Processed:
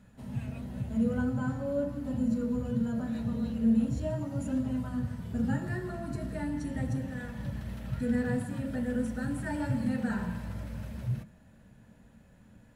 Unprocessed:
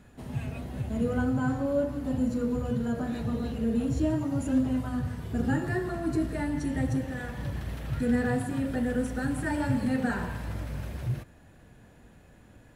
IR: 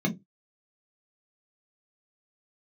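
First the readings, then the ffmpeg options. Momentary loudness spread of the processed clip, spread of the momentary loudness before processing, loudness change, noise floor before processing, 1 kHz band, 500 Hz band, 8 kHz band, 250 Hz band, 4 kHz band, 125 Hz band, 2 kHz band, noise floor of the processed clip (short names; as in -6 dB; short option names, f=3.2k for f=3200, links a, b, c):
9 LU, 8 LU, -2.5 dB, -55 dBFS, -6.5 dB, -4.5 dB, -5.5 dB, -2.0 dB, n/a, -2.0 dB, -5.5 dB, -58 dBFS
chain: -filter_complex "[0:a]asplit=2[a][b];[b]lowshelf=f=340:g=-6.5[c];[1:a]atrim=start_sample=2205[d];[c][d]afir=irnorm=-1:irlink=0,volume=-16dB[e];[a][e]amix=inputs=2:normalize=0,volume=-4.5dB"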